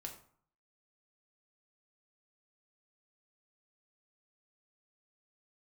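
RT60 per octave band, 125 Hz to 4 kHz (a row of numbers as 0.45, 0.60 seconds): 0.70, 0.60, 0.50, 0.60, 0.45, 0.35 seconds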